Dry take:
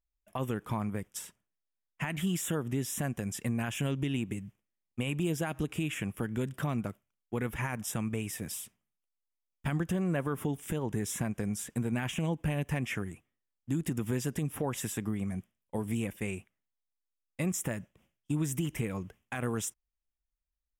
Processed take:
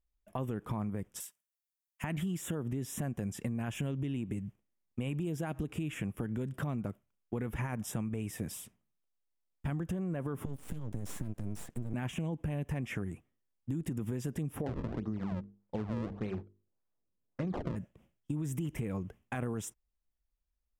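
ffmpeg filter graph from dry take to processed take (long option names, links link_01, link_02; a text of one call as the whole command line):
ffmpeg -i in.wav -filter_complex "[0:a]asettb=1/sr,asplit=3[link_01][link_02][link_03];[link_01]atrim=end=1.204[link_04];[link_02]atrim=start=1.2:end=2.04,asetpts=PTS-STARTPTS,afade=type=in:duration=0.004:curve=qsin,afade=type=out:start_time=0.836:duration=0.004:curve=qsin,acontrast=27,aderivative[link_05];[link_03]atrim=start=2.036[link_06];[link_04][link_05]acrossfade=duration=0.004:curve1=hsin:curve2=qsin[link_07];[link_07][link_06]acrossfade=duration=0.004:curve1=qsin:curve2=hsin,asettb=1/sr,asplit=3[link_08][link_09][link_10];[link_08]atrim=end=10.454[link_11];[link_09]atrim=start=10.45:end=11.94,asetpts=PTS-STARTPTS,afade=type=in:duration=0.004:curve=qsin,afade=type=out:start_time=1.486:duration=0.004:curve=qsin,acrossover=split=200|3000[link_12][link_13][link_14];[link_13]acompressor=threshold=-48dB:ratio=3:attack=3.2:release=140:knee=2.83:detection=peak[link_15];[link_12][link_15][link_14]amix=inputs=3:normalize=0,aeval=exprs='max(val(0),0)':channel_layout=same[link_16];[link_10]atrim=start=11.936[link_17];[link_11][link_16]acrossfade=duration=0.004:curve1=hsin:curve2=qsin[link_18];[link_18][link_17]acrossfade=duration=0.004:curve1=qsin:curve2=hsin,asettb=1/sr,asplit=3[link_19][link_20][link_21];[link_19]atrim=end=14.664[link_22];[link_20]atrim=start=14.66:end=17.76,asetpts=PTS-STARTPTS,afade=type=in:duration=0.004:curve=qsin,afade=type=out:start_time=3.096:duration=0.004:curve=qsin,acrusher=samples=34:mix=1:aa=0.000001:lfo=1:lforange=54.4:lforate=1.7,bandreject=frequency=50:width_type=h:width=6,bandreject=frequency=100:width_type=h:width=6,bandreject=frequency=150:width_type=h:width=6,bandreject=frequency=200:width_type=h:width=6,bandreject=frequency=250:width_type=h:width=6,bandreject=frequency=300:width_type=h:width=6,bandreject=frequency=350:width_type=h:width=6,bandreject=frequency=400:width_type=h:width=6,bandreject=frequency=450:width_type=h:width=6,adynamicsmooth=sensitivity=1.5:basefreq=2800[link_23];[link_21]atrim=start=17.756[link_24];[link_22][link_23]acrossfade=duration=0.004:curve1=hsin:curve2=qsin[link_25];[link_25][link_24]acrossfade=duration=0.004:curve1=qsin:curve2=hsin,tiltshelf=frequency=1100:gain=5,alimiter=limit=-22.5dB:level=0:latency=1:release=14,acompressor=threshold=-32dB:ratio=6" out.wav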